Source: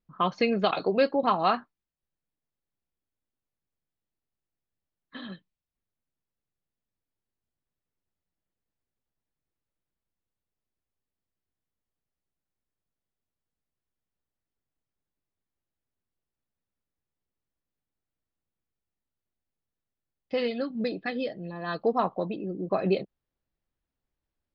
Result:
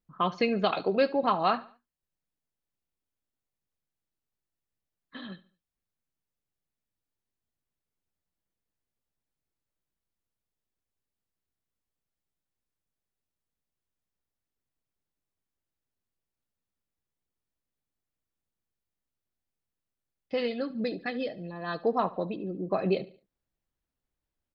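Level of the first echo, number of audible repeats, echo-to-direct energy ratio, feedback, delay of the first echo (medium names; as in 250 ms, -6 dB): -19.0 dB, 2, -18.5 dB, 38%, 72 ms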